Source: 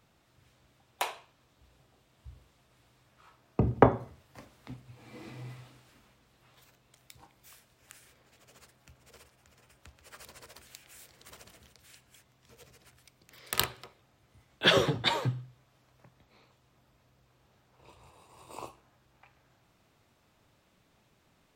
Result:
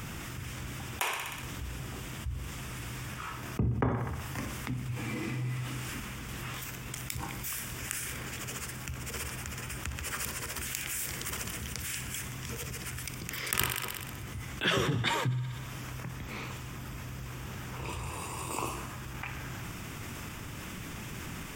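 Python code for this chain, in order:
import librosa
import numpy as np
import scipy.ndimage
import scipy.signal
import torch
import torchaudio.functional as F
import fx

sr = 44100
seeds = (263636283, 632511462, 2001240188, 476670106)

y = fx.peak_eq(x, sr, hz=630.0, db=-11.5, octaves=1.3)
y = fx.tremolo_random(y, sr, seeds[0], hz=3.5, depth_pct=55)
y = fx.peak_eq(y, sr, hz=4100.0, db=-13.5, octaves=0.36)
y = fx.echo_thinned(y, sr, ms=62, feedback_pct=56, hz=420.0, wet_db=-16.0)
y = fx.env_flatten(y, sr, amount_pct=70)
y = F.gain(torch.from_numpy(y), -4.0).numpy()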